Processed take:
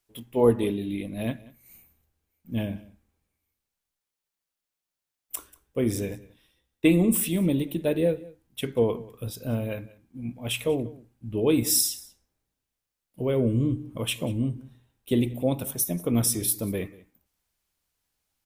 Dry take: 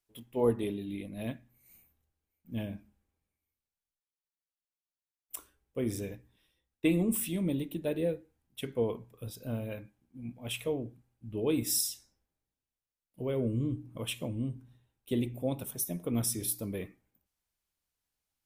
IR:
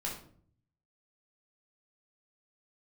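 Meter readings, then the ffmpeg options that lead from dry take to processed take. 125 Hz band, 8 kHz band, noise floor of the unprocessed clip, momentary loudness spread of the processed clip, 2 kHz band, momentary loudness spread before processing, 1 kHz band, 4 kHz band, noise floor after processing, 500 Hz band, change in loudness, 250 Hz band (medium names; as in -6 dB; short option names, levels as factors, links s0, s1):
+7.5 dB, +7.5 dB, under -85 dBFS, 16 LU, +7.5 dB, 16 LU, +7.5 dB, +7.5 dB, under -85 dBFS, +7.5 dB, +7.5 dB, +7.5 dB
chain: -af "aecho=1:1:187:0.0841,volume=2.37"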